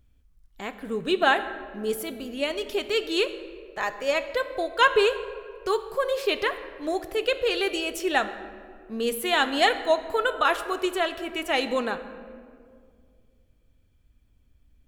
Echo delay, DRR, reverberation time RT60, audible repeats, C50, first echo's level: no echo, 9.0 dB, 2.2 s, no echo, 12.0 dB, no echo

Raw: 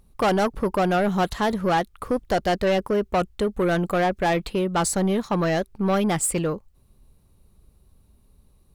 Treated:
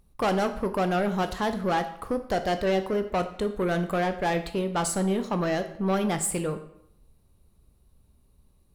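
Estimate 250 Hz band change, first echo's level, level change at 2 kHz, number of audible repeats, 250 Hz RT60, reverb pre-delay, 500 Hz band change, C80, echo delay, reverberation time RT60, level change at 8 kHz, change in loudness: -4.0 dB, no echo, -4.0 dB, no echo, 0.70 s, 13 ms, -4.0 dB, 14.5 dB, no echo, 0.75 s, -4.0 dB, -4.0 dB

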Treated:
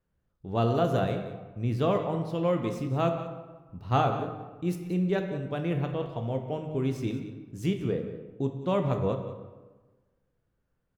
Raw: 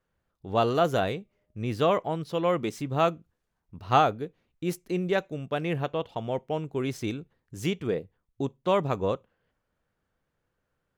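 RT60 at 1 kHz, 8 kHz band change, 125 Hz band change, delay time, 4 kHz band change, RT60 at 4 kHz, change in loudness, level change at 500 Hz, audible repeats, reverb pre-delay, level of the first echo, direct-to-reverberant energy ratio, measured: 1.3 s, -6.5 dB, +3.5 dB, 183 ms, -5.5 dB, 0.75 s, -1.5 dB, -2.0 dB, 1, 8 ms, -14.0 dB, 4.5 dB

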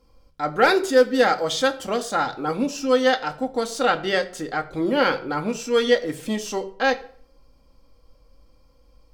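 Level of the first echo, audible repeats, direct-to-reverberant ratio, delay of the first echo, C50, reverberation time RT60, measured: no echo, no echo, 5.0 dB, no echo, 15.5 dB, 0.55 s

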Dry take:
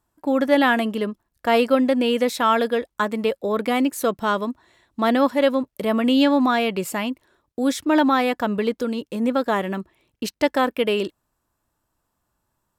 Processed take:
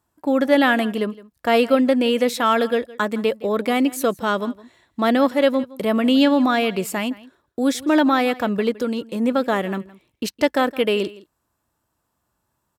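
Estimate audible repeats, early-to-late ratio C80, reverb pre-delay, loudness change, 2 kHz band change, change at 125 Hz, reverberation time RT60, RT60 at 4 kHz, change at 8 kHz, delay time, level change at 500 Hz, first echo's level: 1, no reverb, no reverb, +1.0 dB, +1.5 dB, no reading, no reverb, no reverb, +1.5 dB, 164 ms, +1.5 dB, -20.0 dB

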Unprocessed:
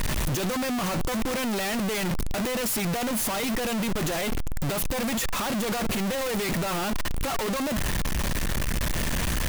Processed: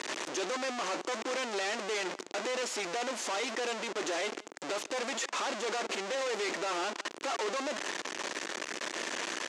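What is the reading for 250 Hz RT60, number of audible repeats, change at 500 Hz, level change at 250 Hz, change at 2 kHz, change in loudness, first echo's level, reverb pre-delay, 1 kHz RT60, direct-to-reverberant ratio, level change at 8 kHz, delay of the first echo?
no reverb, 1, -4.0 dB, -14.5 dB, -3.5 dB, -7.0 dB, -24.0 dB, no reverb, no reverb, no reverb, -7.0 dB, 169 ms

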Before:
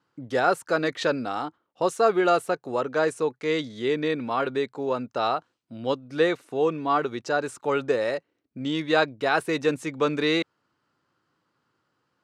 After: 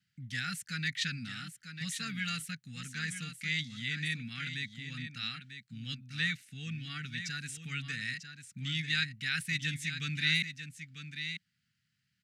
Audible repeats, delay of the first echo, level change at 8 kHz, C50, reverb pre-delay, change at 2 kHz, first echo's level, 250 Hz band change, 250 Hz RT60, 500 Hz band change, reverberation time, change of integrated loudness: 1, 945 ms, 0.0 dB, no reverb, no reverb, -4.0 dB, -9.5 dB, -13.5 dB, no reverb, under -40 dB, no reverb, -10.0 dB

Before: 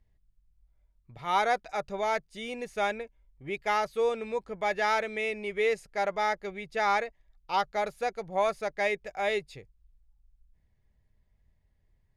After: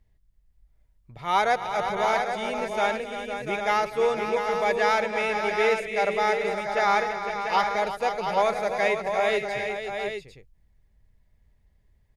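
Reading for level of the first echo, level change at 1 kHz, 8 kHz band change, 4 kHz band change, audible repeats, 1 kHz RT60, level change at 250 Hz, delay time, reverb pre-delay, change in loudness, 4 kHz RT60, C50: -19.0 dB, +5.5 dB, +5.5 dB, +5.5 dB, 6, no reverb, +5.5 dB, 107 ms, no reverb, +5.0 dB, no reverb, no reverb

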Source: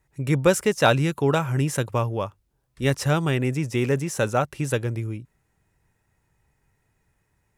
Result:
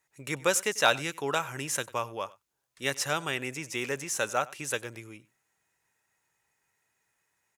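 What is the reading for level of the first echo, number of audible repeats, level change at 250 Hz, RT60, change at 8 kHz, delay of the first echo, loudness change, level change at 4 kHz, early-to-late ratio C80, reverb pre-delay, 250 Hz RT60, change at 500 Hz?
-21.5 dB, 1, -14.0 dB, no reverb, +1.5 dB, 95 ms, -6.5 dB, -0.5 dB, no reverb, no reverb, no reverb, -9.0 dB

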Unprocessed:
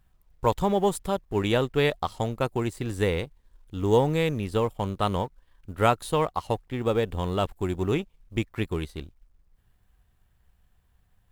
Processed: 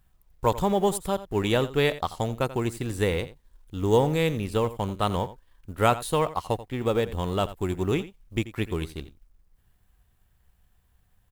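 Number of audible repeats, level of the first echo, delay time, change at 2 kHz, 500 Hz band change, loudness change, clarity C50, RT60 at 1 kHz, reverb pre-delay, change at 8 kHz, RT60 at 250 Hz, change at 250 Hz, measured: 1, -15.5 dB, 86 ms, +0.5 dB, 0.0 dB, +0.5 dB, no reverb, no reverb, no reverb, +3.5 dB, no reverb, 0.0 dB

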